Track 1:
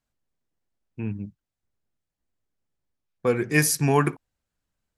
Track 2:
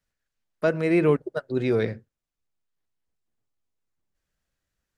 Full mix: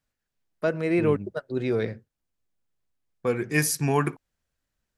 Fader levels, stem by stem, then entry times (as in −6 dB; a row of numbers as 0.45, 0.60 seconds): −3.0, −2.5 decibels; 0.00, 0.00 seconds